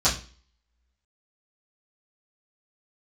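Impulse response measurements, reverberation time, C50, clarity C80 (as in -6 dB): 0.40 s, 10.0 dB, 15.5 dB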